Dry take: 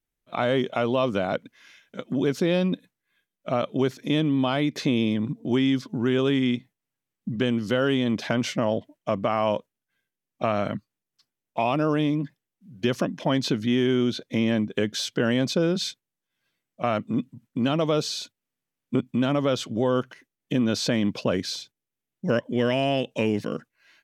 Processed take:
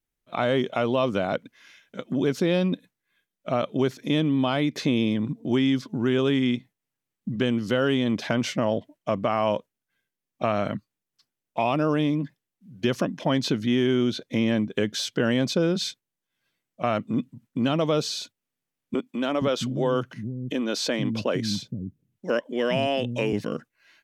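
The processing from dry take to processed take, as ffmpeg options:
-filter_complex "[0:a]asettb=1/sr,asplit=3[a][b][c];[a]atrim=end=18.944[d];[b]atrim=start=18.94:end=23.33,asetpts=PTS-STARTPTS,afade=t=in:d=0.004:c=qsin,afade=t=out:st=4.386:d=0.004:c=qsin,acrossover=split=230[e][f];[e]adelay=470[g];[g][f]amix=inputs=2:normalize=0,atrim=end_sample=193599[h];[c]atrim=start=23.326[i];[d][h]acrossfade=d=0.004:c1=hsin:c2=qsin[j];[j][i]acrossfade=d=0.004:c1=qsin:c2=hsin"

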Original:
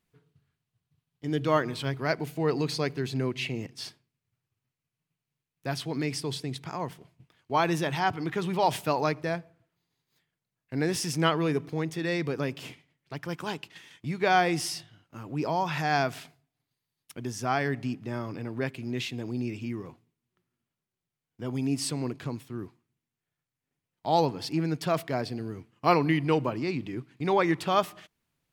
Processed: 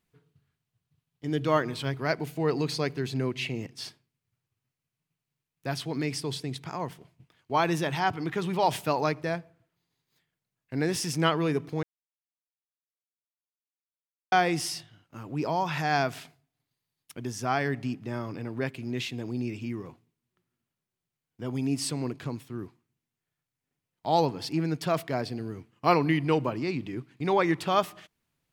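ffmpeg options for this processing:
-filter_complex "[0:a]asplit=3[a][b][c];[a]atrim=end=11.83,asetpts=PTS-STARTPTS,afade=t=out:st=11.826:d=0.004:c=hsin[d];[b]atrim=start=11.83:end=14.32,asetpts=PTS-STARTPTS,volume=0[e];[c]atrim=start=14.32,asetpts=PTS-STARTPTS,afade=t=in:d=0.004:c=hsin[f];[d][e][f]concat=n=3:v=0:a=1"

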